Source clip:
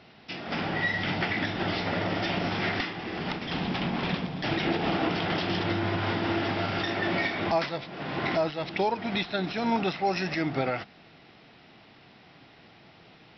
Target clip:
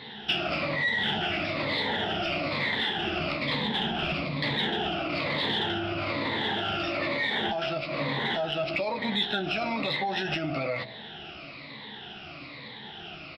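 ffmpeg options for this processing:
-filter_complex "[0:a]afftfilt=real='re*pow(10,15/40*sin(2*PI*(1*log(max(b,1)*sr/1024/100)/log(2)-(-1.1)*(pts-256)/sr)))':imag='im*pow(10,15/40*sin(2*PI*(1*log(max(b,1)*sr/1024/100)/log(2)-(-1.1)*(pts-256)/sr)))':win_size=1024:overlap=0.75,bandreject=f=59.42:t=h:w=4,bandreject=f=118.84:t=h:w=4,bandreject=f=178.26:t=h:w=4,bandreject=f=237.68:t=h:w=4,bandreject=f=297.1:t=h:w=4,bandreject=f=356.52:t=h:w=4,bandreject=f=415.94:t=h:w=4,bandreject=f=475.36:t=h:w=4,bandreject=f=534.78:t=h:w=4,bandreject=f=594.2:t=h:w=4,bandreject=f=653.62:t=h:w=4,bandreject=f=713.04:t=h:w=4,bandreject=f=772.46:t=h:w=4,bandreject=f=831.88:t=h:w=4,adynamicequalizer=threshold=0.00631:dfrequency=610:dqfactor=5:tfrequency=610:tqfactor=5:attack=5:release=100:ratio=0.375:range=3:mode=boostabove:tftype=bell,alimiter=limit=-21dB:level=0:latency=1:release=14,acompressor=threshold=-35dB:ratio=6,lowpass=f=3.6k:t=q:w=2.3,aeval=exprs='0.0944*(cos(1*acos(clip(val(0)/0.0944,-1,1)))-cos(1*PI/2))+0.00106*(cos(7*acos(clip(val(0)/0.0944,-1,1)))-cos(7*PI/2))':c=same,asplit=2[a][b];[b]adelay=14,volume=-7dB[c];[a][c]amix=inputs=2:normalize=0,volume=6.5dB"

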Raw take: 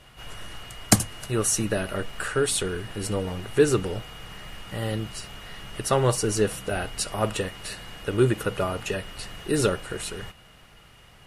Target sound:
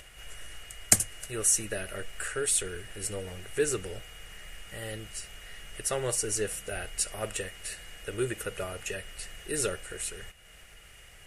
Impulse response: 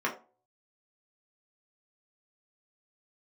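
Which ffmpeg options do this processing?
-af "equalizer=f=125:t=o:w=1:g=-9,equalizer=f=250:t=o:w=1:g=-11,equalizer=f=1k:t=o:w=1:g=-12,equalizer=f=2k:t=o:w=1:g=4,equalizer=f=4k:t=o:w=1:g=-7,equalizer=f=8k:t=o:w=1:g=6,acompressor=mode=upward:threshold=-41dB:ratio=2.5,volume=-3dB"

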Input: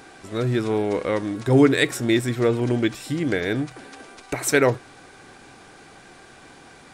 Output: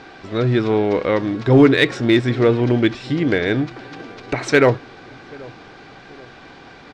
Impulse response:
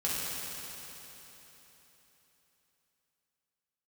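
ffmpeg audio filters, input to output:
-filter_complex "[0:a]lowpass=f=4.9k:w=0.5412,lowpass=f=4.9k:w=1.3066,asplit=2[a][b];[b]volume=13.5dB,asoftclip=hard,volume=-13.5dB,volume=-4dB[c];[a][c]amix=inputs=2:normalize=0,asplit=2[d][e];[e]adelay=782,lowpass=f=880:p=1,volume=-22dB,asplit=2[f][g];[g]adelay=782,lowpass=f=880:p=1,volume=0.51,asplit=2[h][i];[i]adelay=782,lowpass=f=880:p=1,volume=0.51,asplit=2[j][k];[k]adelay=782,lowpass=f=880:p=1,volume=0.51[l];[d][f][h][j][l]amix=inputs=5:normalize=0,volume=1dB"

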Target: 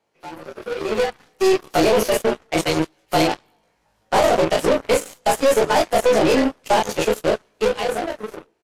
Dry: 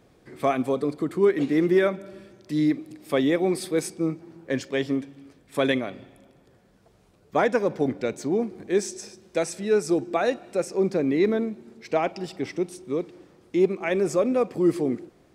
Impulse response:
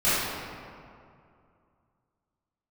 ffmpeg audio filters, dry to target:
-filter_complex "[0:a]afftfilt=real='re':imag='-im':win_size=2048:overlap=0.75,asplit=2[a][b];[b]adelay=48,volume=-3dB[c];[a][c]amix=inputs=2:normalize=0,asetrate=56007,aresample=44100,acrossover=split=130|780|4500[d][e][f][g];[d]acompressor=threshold=-48dB:ratio=4[h];[e]acompressor=threshold=-25dB:ratio=4[i];[f]acompressor=threshold=-45dB:ratio=4[j];[g]acompressor=threshold=-45dB:ratio=4[k];[h][i][j][k]amix=inputs=4:normalize=0,asubboost=boost=2:cutoff=170,asplit=2[l][m];[m]highpass=f=720:p=1,volume=19dB,asoftclip=type=tanh:threshold=-18dB[n];[l][n]amix=inputs=2:normalize=0,lowpass=f=7.3k:p=1,volume=-6dB,dynaudnorm=f=320:g=9:m=9dB,asplit=2[o][p];[p]adelay=129,lowpass=f=2.5k:p=1,volume=-20dB,asplit=2[q][r];[r]adelay=129,lowpass=f=2.5k:p=1,volume=0.21[s];[q][s]amix=inputs=2:normalize=0[t];[o][t]amix=inputs=2:normalize=0,atempo=1.4,aeval=exprs='0.355*(cos(1*acos(clip(val(0)/0.355,-1,1)))-cos(1*PI/2))+0.0708*(cos(2*acos(clip(val(0)/0.355,-1,1)))-cos(2*PI/2))+0.0158*(cos(6*acos(clip(val(0)/0.355,-1,1)))-cos(6*PI/2))+0.0562*(cos(7*acos(clip(val(0)/0.355,-1,1)))-cos(7*PI/2))+0.0178*(cos(8*acos(clip(val(0)/0.355,-1,1)))-cos(8*PI/2))':c=same" -ar 32000 -c:a aac -b:a 64k

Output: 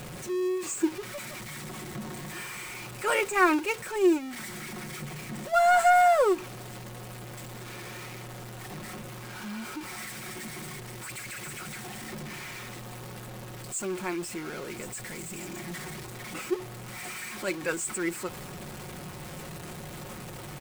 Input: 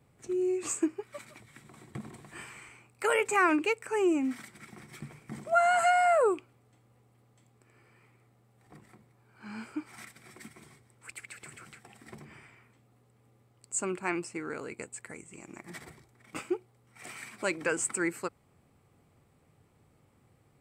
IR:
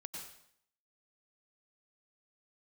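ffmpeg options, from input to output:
-af "aeval=exprs='val(0)+0.5*0.0335*sgn(val(0))':c=same,agate=range=-6dB:threshold=-25dB:ratio=16:detection=peak,aecho=1:1:5.5:0.51"

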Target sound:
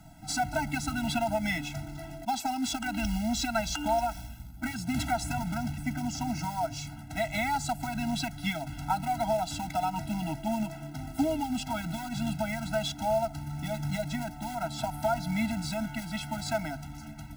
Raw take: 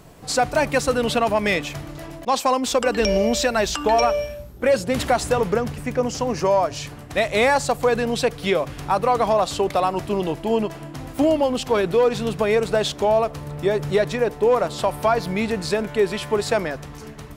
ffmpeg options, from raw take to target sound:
-filter_complex "[0:a]acrossover=split=150[a][b];[b]acompressor=threshold=-18dB:ratio=8[c];[a][c]amix=inputs=2:normalize=0,acrusher=bits=4:mode=log:mix=0:aa=0.000001,afftfilt=real='re*eq(mod(floor(b*sr/1024/320),2),0)':imag='im*eq(mod(floor(b*sr/1024/320),2),0)':win_size=1024:overlap=0.75,volume=-4dB"

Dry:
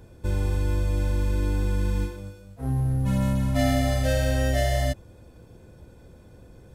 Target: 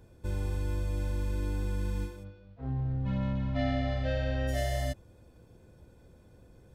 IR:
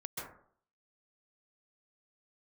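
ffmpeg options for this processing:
-filter_complex "[0:a]asplit=3[a][b][c];[a]afade=t=out:st=2.23:d=0.02[d];[b]lowpass=f=4k:w=0.5412,lowpass=f=4k:w=1.3066,afade=t=in:st=2.23:d=0.02,afade=t=out:st=4.47:d=0.02[e];[c]afade=t=in:st=4.47:d=0.02[f];[d][e][f]amix=inputs=3:normalize=0,volume=-7.5dB"

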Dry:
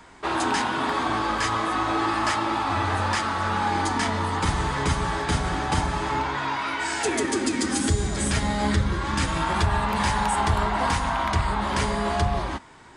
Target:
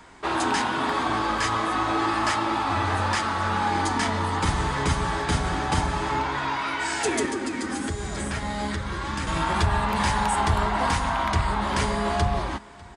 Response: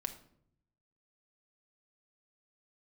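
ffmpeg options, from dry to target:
-filter_complex "[0:a]asettb=1/sr,asplit=3[a][b][c];[a]atrim=end=7.254[d];[b]atrim=start=7.25:end=9.27,asetpts=PTS-STARTPTS,afade=t=in:d=0.004:c=qsin,afade=t=out:st=2.016:d=0.004:c=qsin,acrossover=split=520|2400[e][f][g];[e]acompressor=threshold=-29dB:ratio=4[h];[f]acompressor=threshold=-31dB:ratio=4[i];[g]acompressor=threshold=-39dB:ratio=4[j];[h][i][j]amix=inputs=3:normalize=0[k];[c]atrim=start=9.266[l];[d][k]acrossfade=d=0.004:c1=hsin:c2=qsin[m];[m][l]acrossfade=d=0.004:c1=qsin:c2=hsin,asplit=2[n][o];[o]aecho=0:1:598:0.0631[p];[n][p]amix=inputs=2:normalize=0"

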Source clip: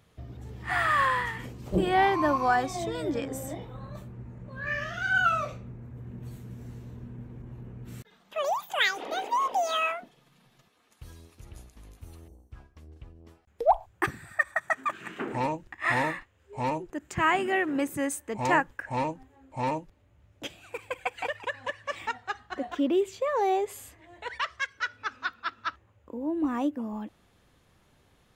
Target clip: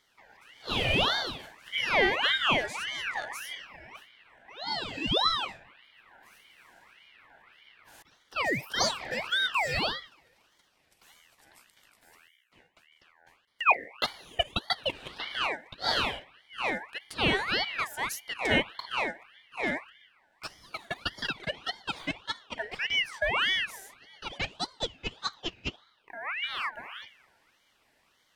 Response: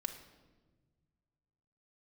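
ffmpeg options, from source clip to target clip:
-filter_complex "[0:a]highpass=f=380:w=0.5412,highpass=f=380:w=1.3066,asplit=2[a][b];[b]tiltshelf=f=1.5k:g=7.5[c];[1:a]atrim=start_sample=2205[d];[c][d]afir=irnorm=-1:irlink=0,volume=-12.5dB[e];[a][e]amix=inputs=2:normalize=0,aeval=exprs='val(0)*sin(2*PI*1900*n/s+1900*0.4/1.7*sin(2*PI*1.7*n/s))':c=same"

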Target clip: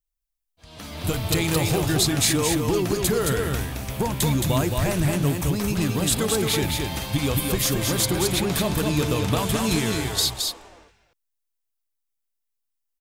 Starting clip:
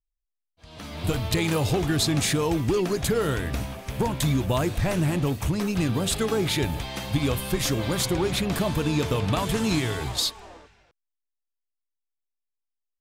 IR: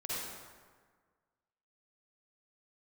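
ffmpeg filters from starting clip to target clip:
-filter_complex "[0:a]crystalizer=i=1:c=0,asplit=2[a][b];[b]aecho=0:1:219:0.631[c];[a][c]amix=inputs=2:normalize=0"

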